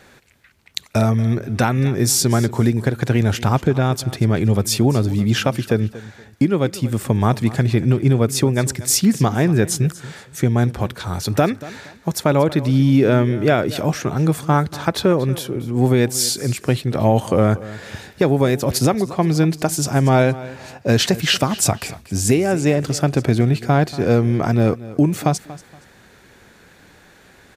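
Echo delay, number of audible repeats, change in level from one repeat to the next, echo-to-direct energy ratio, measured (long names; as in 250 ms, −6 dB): 235 ms, 2, −11.5 dB, −17.0 dB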